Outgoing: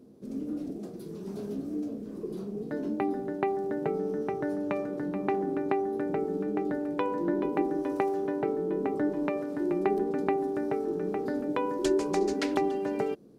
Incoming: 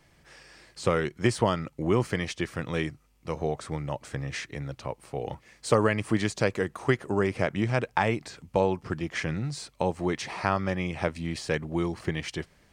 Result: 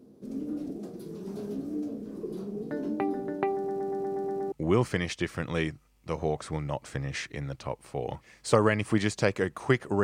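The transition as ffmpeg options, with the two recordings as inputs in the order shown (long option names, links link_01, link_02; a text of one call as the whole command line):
ffmpeg -i cue0.wav -i cue1.wav -filter_complex "[0:a]apad=whole_dur=10.03,atrim=end=10.03,asplit=8[link_01][link_02][link_03][link_04][link_05][link_06][link_07][link_08];[link_01]atrim=end=3.682[link_09];[link_02]atrim=start=3.558:end=3.682[link_10];[link_03]atrim=start=3.558:end=3.682[link_11];[link_04]atrim=start=3.558:end=3.682[link_12];[link_05]atrim=start=3.558:end=3.682[link_13];[link_06]atrim=start=3.558:end=3.682[link_14];[link_07]atrim=start=3.558:end=3.682[link_15];[link_08]atrim=start=3.558:end=3.682[link_16];[1:a]atrim=start=1.708:end=7.22[link_17];[link_09][link_10]acrossfade=duration=0.004:curve1=hsin:curve2=hsin[link_18];[link_18][link_11]acrossfade=duration=0.004:curve1=hsin:curve2=hsin[link_19];[link_19][link_12]acrossfade=duration=0.004:curve1=hsin:curve2=hsin[link_20];[link_20][link_13]acrossfade=duration=0.004:curve1=hsin:curve2=hsin[link_21];[link_21][link_14]acrossfade=duration=0.004:curve1=hsin:curve2=hsin[link_22];[link_22][link_15]acrossfade=duration=0.004:curve1=hsin:curve2=hsin[link_23];[link_23][link_16]acrossfade=duration=0.004:curve1=hsin:curve2=hsin[link_24];[link_24][link_17]acrossfade=duration=0.004:curve1=hsin:curve2=hsin" out.wav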